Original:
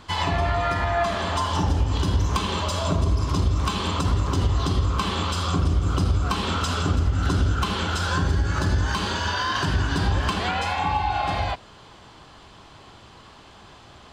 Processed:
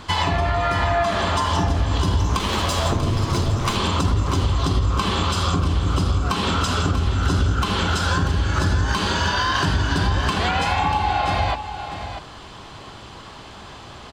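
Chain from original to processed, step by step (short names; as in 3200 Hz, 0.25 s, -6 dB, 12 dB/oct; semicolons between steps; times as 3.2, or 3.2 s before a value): 2.39–3.77 minimum comb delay 8.8 ms; compressor 3:1, threshold -26 dBFS, peak gain reduction 7.5 dB; on a send: echo 0.64 s -10 dB; on the sum: gain +7.5 dB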